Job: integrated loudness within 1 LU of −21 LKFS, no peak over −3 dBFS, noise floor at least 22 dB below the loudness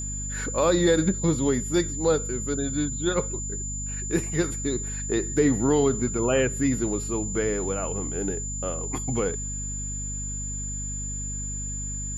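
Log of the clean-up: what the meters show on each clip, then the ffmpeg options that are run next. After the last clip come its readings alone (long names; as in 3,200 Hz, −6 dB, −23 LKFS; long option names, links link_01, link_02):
mains hum 50 Hz; hum harmonics up to 250 Hz; level of the hum −32 dBFS; interfering tone 7,100 Hz; level of the tone −32 dBFS; integrated loudness −26.0 LKFS; sample peak −10.0 dBFS; target loudness −21.0 LKFS
→ -af "bandreject=frequency=50:width_type=h:width=4,bandreject=frequency=100:width_type=h:width=4,bandreject=frequency=150:width_type=h:width=4,bandreject=frequency=200:width_type=h:width=4,bandreject=frequency=250:width_type=h:width=4"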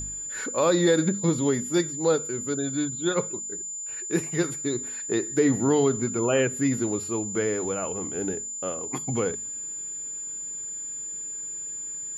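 mains hum none found; interfering tone 7,100 Hz; level of the tone −32 dBFS
→ -af "bandreject=frequency=7100:width=30"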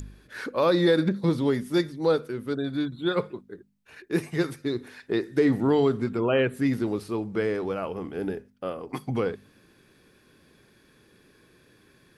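interfering tone none found; integrated loudness −26.5 LKFS; sample peak −10.5 dBFS; target loudness −21.0 LKFS
→ -af "volume=5.5dB"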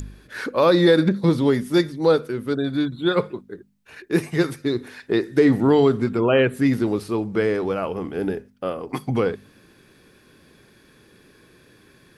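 integrated loudness −21.0 LKFS; sample peak −5.0 dBFS; background noise floor −55 dBFS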